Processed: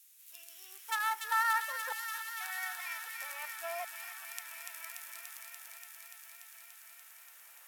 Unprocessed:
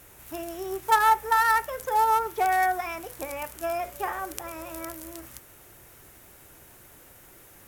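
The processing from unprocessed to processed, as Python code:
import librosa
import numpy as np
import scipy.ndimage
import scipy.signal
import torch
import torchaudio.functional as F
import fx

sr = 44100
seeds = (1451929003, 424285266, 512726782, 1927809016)

y = fx.highpass(x, sr, hz=fx.steps((0.0, 140.0), (1.45, 520.0)), slope=12)
y = fx.filter_lfo_highpass(y, sr, shape='saw_down', hz=0.52, low_hz=760.0, high_hz=4300.0, q=0.97)
y = fx.echo_wet_highpass(y, sr, ms=290, feedback_pct=83, hz=2000.0, wet_db=-4)
y = F.gain(torch.from_numpy(y), -7.5).numpy()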